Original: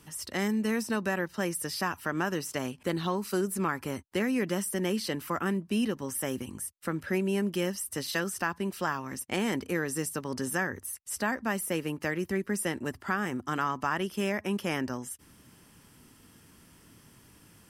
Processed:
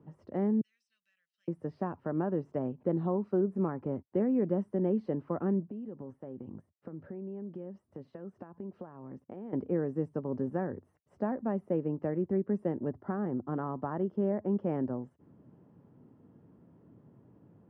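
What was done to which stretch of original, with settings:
0.61–1.48 inverse Chebyshev high-pass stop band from 940 Hz, stop band 60 dB
5.6–9.53 compressor 10:1, threshold -38 dBFS
12.9–14.62 bell 2500 Hz -11 dB 0.22 oct
whole clip: Chebyshev band-pass 120–620 Hz, order 2; gain +1.5 dB

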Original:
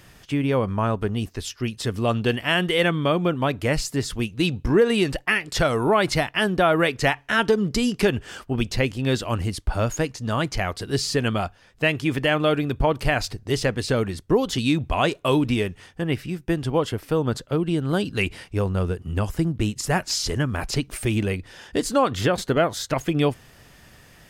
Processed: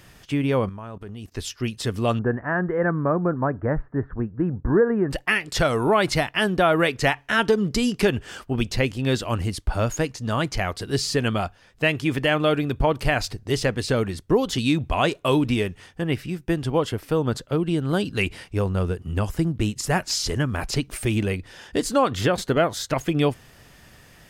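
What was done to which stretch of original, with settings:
0.69–1.32 level quantiser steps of 18 dB
2.19–5.11 Chebyshev low-pass 1700 Hz, order 5

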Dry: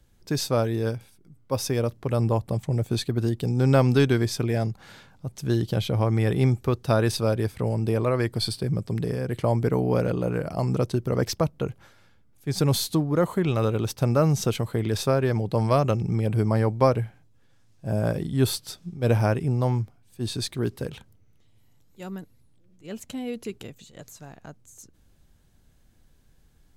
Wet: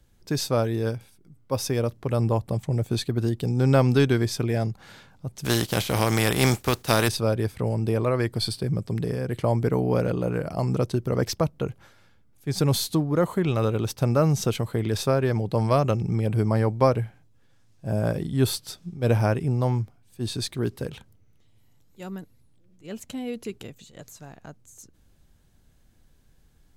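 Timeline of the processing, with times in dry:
5.44–7.07 spectral contrast lowered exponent 0.54

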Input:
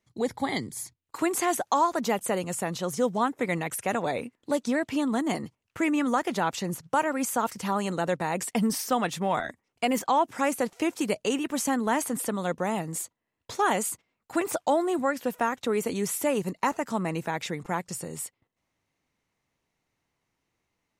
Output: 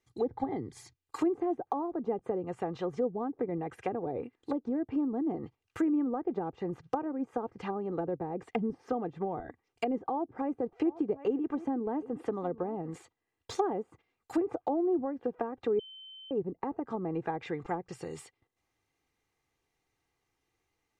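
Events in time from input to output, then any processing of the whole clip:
10.1–13.03 echo 0.752 s -18.5 dB
15.79–16.31 bleep 3080 Hz -10 dBFS
whole clip: treble ducked by the level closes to 470 Hz, closed at -24 dBFS; de-esser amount 95%; comb 2.5 ms, depth 52%; gain -2.5 dB

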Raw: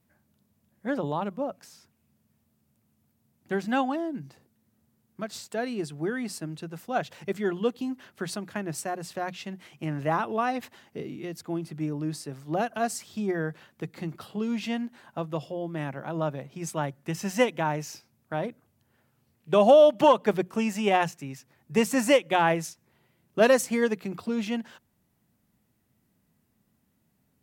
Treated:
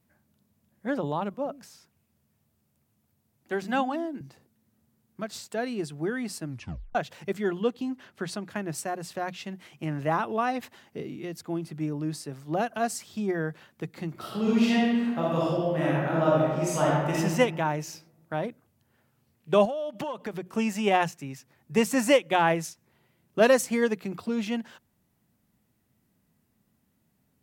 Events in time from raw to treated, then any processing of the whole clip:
1.34–4.21 bands offset in time highs, lows 0.11 s, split 200 Hz
6.45 tape stop 0.50 s
7.62–8.5 high shelf 10000 Hz -9 dB
14.12–17.16 reverb throw, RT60 1.5 s, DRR -6.5 dB
19.65–20.56 compressor 12:1, threshold -29 dBFS

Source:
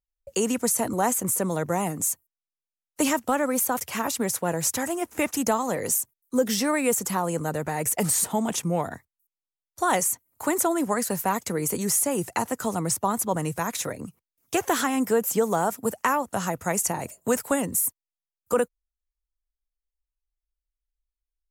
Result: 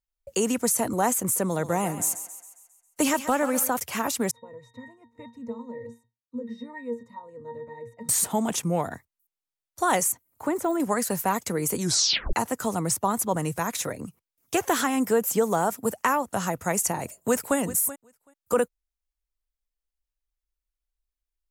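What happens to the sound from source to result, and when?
1.45–3.69 thinning echo 0.135 s, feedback 51%, high-pass 450 Hz, level -11 dB
4.31–8.09 octave resonator A#, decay 0.21 s
10.12–10.8 de-esser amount 100%
11.8 tape stop 0.53 s
17.05–17.57 echo throw 0.38 s, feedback 10%, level -15 dB

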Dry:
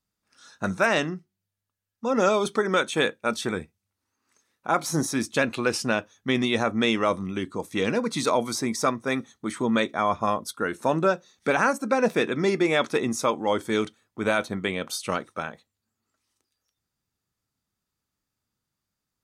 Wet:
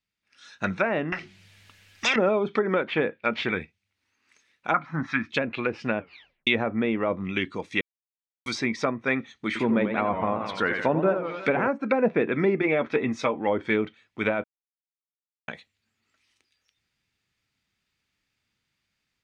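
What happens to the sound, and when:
1.12–2.16 spectral compressor 10:1
2.87–3.51 decimation joined by straight lines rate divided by 4×
4.74–5.3 EQ curve 260 Hz 0 dB, 410 Hz -15 dB, 1300 Hz +12 dB, 8700 Hz -11 dB
5.99 tape stop 0.48 s
7.81–8.46 mute
9.46–11.68 warbling echo 88 ms, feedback 60%, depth 166 cents, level -7.5 dB
12.61–13.36 notch comb 180 Hz
14.44–15.48 mute
whole clip: treble ducked by the level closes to 820 Hz, closed at -19.5 dBFS; EQ curve 1200 Hz 0 dB, 2300 Hz +14 dB, 12000 Hz -8 dB; AGC gain up to 9 dB; gain -7 dB

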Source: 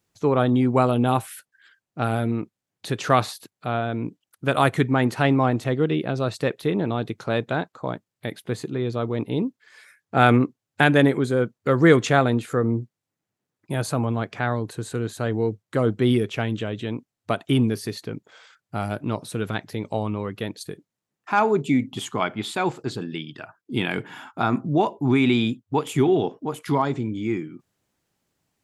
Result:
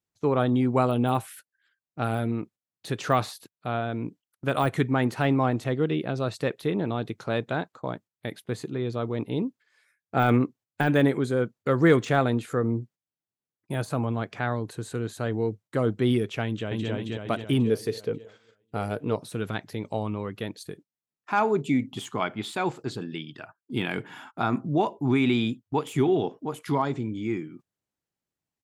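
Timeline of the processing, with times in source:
16.44–16.9 echo throw 0.27 s, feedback 55%, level -0.5 dB
17.65–19.16 bell 460 Hz +14.5 dB 0.26 oct
whole clip: de-esser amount 70%; gate -43 dBFS, range -12 dB; gain -3.5 dB

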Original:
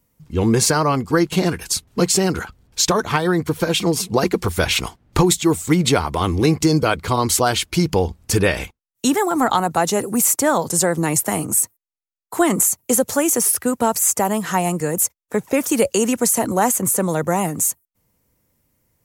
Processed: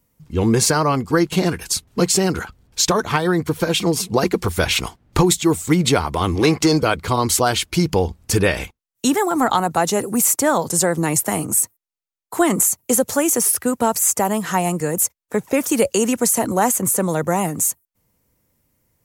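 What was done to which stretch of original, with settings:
6.35–6.82 overdrive pedal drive 13 dB, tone 4200 Hz, clips at -4 dBFS

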